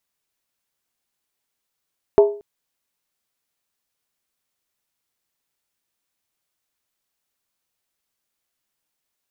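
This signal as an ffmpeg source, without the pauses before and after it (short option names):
-f lavfi -i "aevalsrc='0.531*pow(10,-3*t/0.4)*sin(2*PI*411*t)+0.211*pow(10,-3*t/0.317)*sin(2*PI*655.1*t)+0.0841*pow(10,-3*t/0.274)*sin(2*PI*877.9*t)+0.0335*pow(10,-3*t/0.264)*sin(2*PI*943.7*t)+0.0133*pow(10,-3*t/0.246)*sin(2*PI*1090.4*t)':d=0.23:s=44100"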